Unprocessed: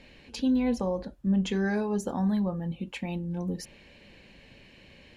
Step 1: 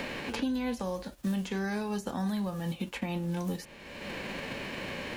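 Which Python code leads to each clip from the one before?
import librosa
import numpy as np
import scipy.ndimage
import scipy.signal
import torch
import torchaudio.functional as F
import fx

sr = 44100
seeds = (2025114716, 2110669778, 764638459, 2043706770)

y = fx.envelope_flatten(x, sr, power=0.6)
y = fx.band_squash(y, sr, depth_pct=100)
y = y * 10.0 ** (-5.0 / 20.0)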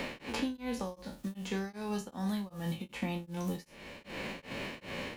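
y = fx.spec_trails(x, sr, decay_s=0.35)
y = fx.notch(y, sr, hz=1600.0, q=18.0)
y = y * np.abs(np.cos(np.pi * 2.6 * np.arange(len(y)) / sr))
y = y * 10.0 ** (-1.5 / 20.0)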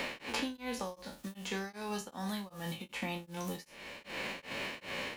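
y = fx.low_shelf(x, sr, hz=420.0, db=-10.0)
y = y * 10.0 ** (3.0 / 20.0)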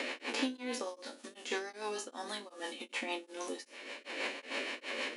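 y = fx.octave_divider(x, sr, octaves=2, level_db=-4.0)
y = fx.rotary(y, sr, hz=6.3)
y = fx.brickwall_bandpass(y, sr, low_hz=230.0, high_hz=11000.0)
y = y * 10.0 ** (4.0 / 20.0)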